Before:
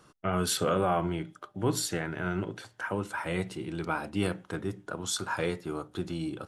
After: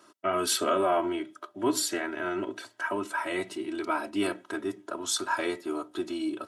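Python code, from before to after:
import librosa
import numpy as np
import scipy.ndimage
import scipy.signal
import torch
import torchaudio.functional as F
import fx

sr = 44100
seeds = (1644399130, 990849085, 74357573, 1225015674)

y = scipy.signal.sosfilt(scipy.signal.butter(2, 240.0, 'highpass', fs=sr, output='sos'), x)
y = y + 0.94 * np.pad(y, (int(3.1 * sr / 1000.0), 0))[:len(y)]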